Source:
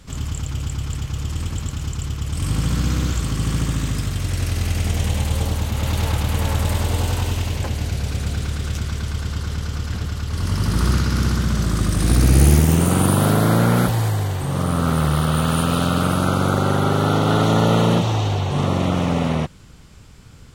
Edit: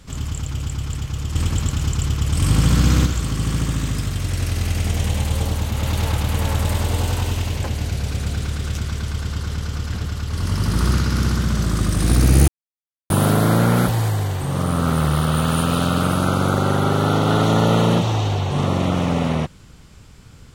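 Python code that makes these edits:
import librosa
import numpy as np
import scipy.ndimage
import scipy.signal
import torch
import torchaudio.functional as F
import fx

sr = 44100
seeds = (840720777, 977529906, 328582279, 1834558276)

y = fx.edit(x, sr, fx.clip_gain(start_s=1.35, length_s=1.71, db=5.0),
    fx.silence(start_s=12.48, length_s=0.62), tone=tone)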